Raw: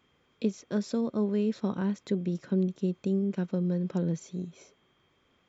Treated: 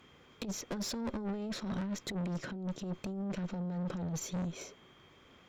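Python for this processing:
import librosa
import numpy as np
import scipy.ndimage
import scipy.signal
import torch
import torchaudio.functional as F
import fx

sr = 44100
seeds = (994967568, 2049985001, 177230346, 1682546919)

y = fx.over_compress(x, sr, threshold_db=-32.0, ratio=-0.5)
y = fx.tube_stage(y, sr, drive_db=38.0, bias=0.45)
y = y * 10.0 ** (5.0 / 20.0)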